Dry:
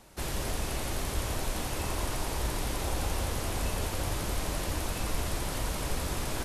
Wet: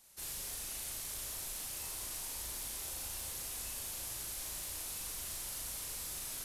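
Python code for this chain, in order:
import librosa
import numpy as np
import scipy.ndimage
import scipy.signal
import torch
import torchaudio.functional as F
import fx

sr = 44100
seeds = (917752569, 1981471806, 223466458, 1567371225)

y = F.preemphasis(torch.from_numpy(x), 0.9).numpy()
y = 10.0 ** (-34.0 / 20.0) * np.tanh(y / 10.0 ** (-34.0 / 20.0))
y = fx.doubler(y, sr, ms=37.0, db=-2.5)
y = y * librosa.db_to_amplitude(-2.0)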